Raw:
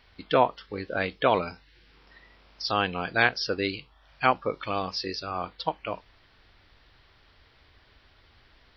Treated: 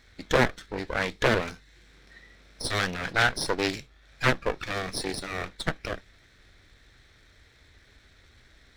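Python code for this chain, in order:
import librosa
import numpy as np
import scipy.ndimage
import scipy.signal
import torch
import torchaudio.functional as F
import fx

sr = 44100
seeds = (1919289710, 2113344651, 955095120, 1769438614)

y = fx.lower_of_two(x, sr, delay_ms=0.52)
y = fx.doppler_dist(y, sr, depth_ms=0.6)
y = y * librosa.db_to_amplitude(3.0)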